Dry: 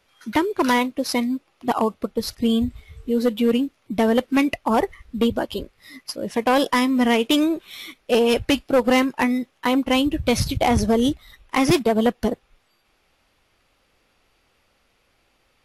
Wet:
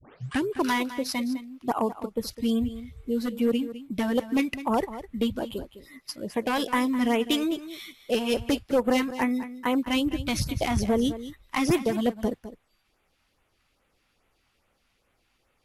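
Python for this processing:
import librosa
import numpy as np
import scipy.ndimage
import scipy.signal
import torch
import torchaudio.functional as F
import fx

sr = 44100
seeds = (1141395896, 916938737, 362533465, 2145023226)

p1 = fx.tape_start_head(x, sr, length_s=0.43)
p2 = fx.filter_lfo_notch(p1, sr, shape='sine', hz=2.4, low_hz=410.0, high_hz=5300.0, q=0.91)
p3 = p2 + fx.echo_single(p2, sr, ms=207, db=-13.5, dry=0)
y = F.gain(torch.from_numpy(p3), -5.0).numpy()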